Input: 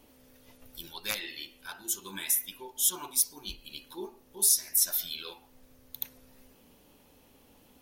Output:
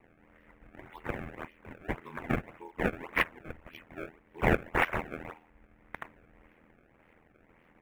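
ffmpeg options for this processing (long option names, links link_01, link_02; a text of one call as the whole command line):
ffmpeg -i in.wav -af "aeval=exprs='val(0)*sin(2*PI*41*n/s)':channel_layout=same,acrusher=samples=26:mix=1:aa=0.000001:lfo=1:lforange=41.6:lforate=1.8,highshelf=frequency=3100:width_type=q:width=3:gain=-13.5" out.wav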